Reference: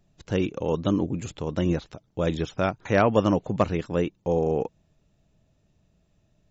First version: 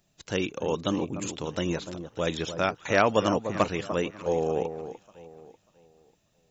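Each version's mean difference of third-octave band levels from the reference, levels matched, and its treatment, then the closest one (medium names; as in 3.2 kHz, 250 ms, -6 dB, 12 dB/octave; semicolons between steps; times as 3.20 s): 5.5 dB: tilt EQ +2.5 dB/octave; on a send: echo whose repeats swap between lows and highs 296 ms, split 1.3 kHz, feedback 51%, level -9.5 dB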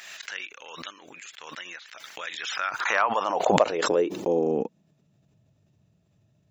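11.0 dB: high-pass sweep 1.8 kHz -> 110 Hz, 2.46–5.37 s; swell ahead of each attack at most 34 dB/s; trim -3.5 dB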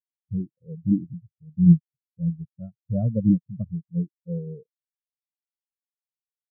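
17.5 dB: peaking EQ 130 Hz +9.5 dB 1.8 oct; spectral contrast expander 4:1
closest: first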